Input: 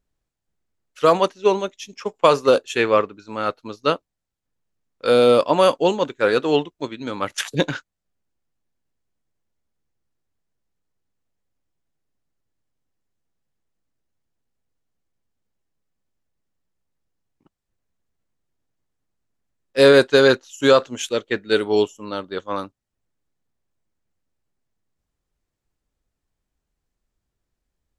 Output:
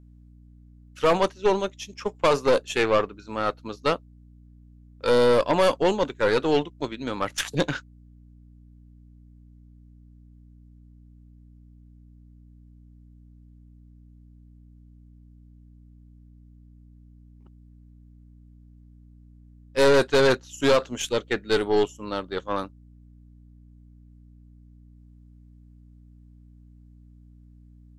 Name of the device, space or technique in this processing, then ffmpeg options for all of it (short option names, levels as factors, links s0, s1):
valve amplifier with mains hum: -af "aeval=exprs='(tanh(5.01*val(0)+0.45)-tanh(0.45))/5.01':c=same,aeval=exprs='val(0)+0.00355*(sin(2*PI*60*n/s)+sin(2*PI*2*60*n/s)/2+sin(2*PI*3*60*n/s)/3+sin(2*PI*4*60*n/s)/4+sin(2*PI*5*60*n/s)/5)':c=same"